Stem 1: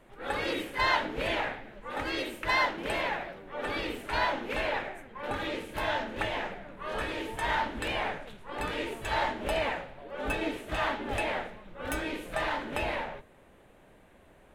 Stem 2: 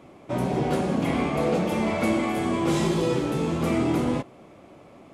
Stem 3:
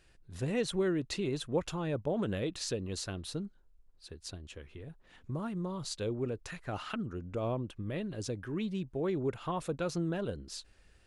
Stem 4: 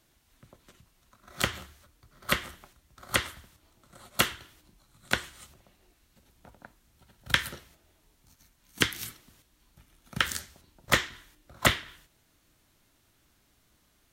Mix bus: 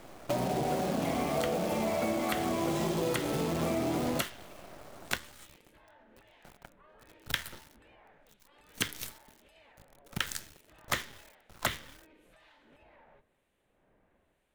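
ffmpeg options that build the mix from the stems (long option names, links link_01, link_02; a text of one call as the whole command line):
ffmpeg -i stem1.wav -i stem2.wav -i stem3.wav -i stem4.wav -filter_complex "[0:a]acompressor=threshold=-43dB:ratio=2.5,volume=-11dB[link_01];[1:a]equalizer=frequency=670:width=2.2:gain=8,volume=-1dB[link_02];[3:a]bandreject=frequency=74.96:width_type=h:width=4,bandreject=frequency=149.92:width_type=h:width=4,bandreject=frequency=224.88:width_type=h:width=4,bandreject=frequency=299.84:width_type=h:width=4,volume=0dB[link_03];[link_02][link_03]amix=inputs=2:normalize=0,acrusher=bits=6:dc=4:mix=0:aa=0.000001,acompressor=threshold=-28dB:ratio=6,volume=0dB[link_04];[link_01]acrossover=split=2300[link_05][link_06];[link_05]aeval=exprs='val(0)*(1-0.7/2+0.7/2*cos(2*PI*1*n/s))':channel_layout=same[link_07];[link_06]aeval=exprs='val(0)*(1-0.7/2-0.7/2*cos(2*PI*1*n/s))':channel_layout=same[link_08];[link_07][link_08]amix=inputs=2:normalize=0,alimiter=level_in=27dB:limit=-24dB:level=0:latency=1:release=136,volume=-27dB,volume=0dB[link_09];[link_04][link_09]amix=inputs=2:normalize=0" out.wav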